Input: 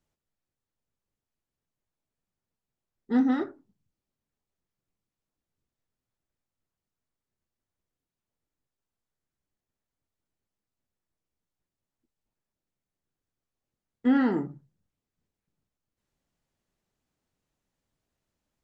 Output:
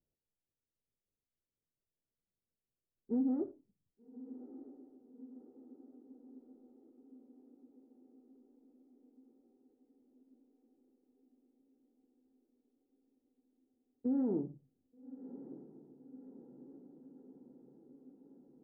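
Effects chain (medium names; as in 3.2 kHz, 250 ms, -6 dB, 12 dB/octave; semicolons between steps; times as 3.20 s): peak limiter -19.5 dBFS, peak gain reduction 6 dB; four-pole ladder low-pass 650 Hz, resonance 30%; echo that smears into a reverb 1192 ms, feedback 67%, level -14.5 dB; endings held to a fixed fall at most 390 dB/s; trim -1 dB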